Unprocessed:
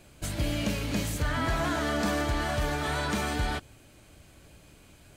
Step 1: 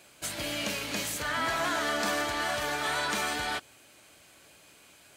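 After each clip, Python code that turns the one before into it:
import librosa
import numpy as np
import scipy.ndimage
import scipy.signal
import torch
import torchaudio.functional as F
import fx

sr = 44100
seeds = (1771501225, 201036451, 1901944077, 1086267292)

y = fx.highpass(x, sr, hz=850.0, slope=6)
y = y * librosa.db_to_amplitude(3.5)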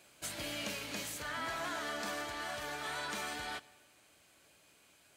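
y = fx.rider(x, sr, range_db=4, speed_s=2.0)
y = fx.rev_freeverb(y, sr, rt60_s=1.4, hf_ratio=0.9, predelay_ms=20, drr_db=19.5)
y = y * librosa.db_to_amplitude(-9.0)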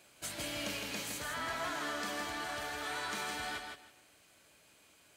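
y = fx.echo_feedback(x, sr, ms=161, feedback_pct=19, wet_db=-5)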